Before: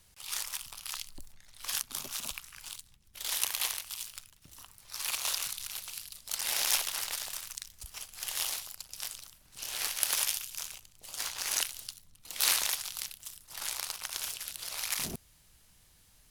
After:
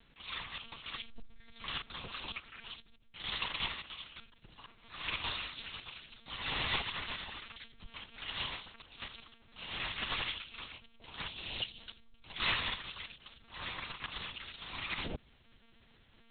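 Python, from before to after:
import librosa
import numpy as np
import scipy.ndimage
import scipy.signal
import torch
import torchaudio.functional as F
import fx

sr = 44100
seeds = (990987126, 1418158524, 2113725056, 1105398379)

y = fx.band_shelf(x, sr, hz=1300.0, db=-13.0, octaves=1.7, at=(11.26, 11.79), fade=0.02)
y = fx.lpc_monotone(y, sr, seeds[0], pitch_hz=230.0, order=8)
y = F.gain(torch.from_numpy(y), 1.5).numpy()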